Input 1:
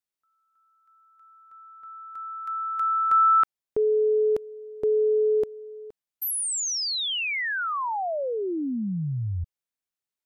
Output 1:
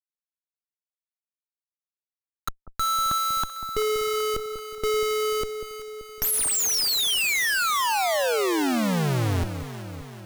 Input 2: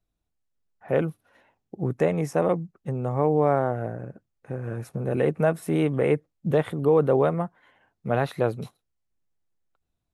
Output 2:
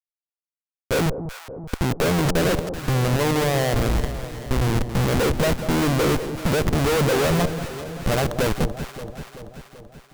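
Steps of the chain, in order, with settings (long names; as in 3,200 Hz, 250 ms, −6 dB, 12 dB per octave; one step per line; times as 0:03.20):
harmonic and percussive parts rebalanced percussive +6 dB
dynamic equaliser 3,300 Hz, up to −3 dB, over −42 dBFS, Q 1.6
in parallel at +2 dB: output level in coarse steps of 18 dB
on the sum: leveller curve on the samples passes 2
comparator with hysteresis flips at −15.5 dBFS
on a send: delay that swaps between a low-pass and a high-pass 192 ms, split 840 Hz, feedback 76%, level −9 dB
on the sum: level −6 dB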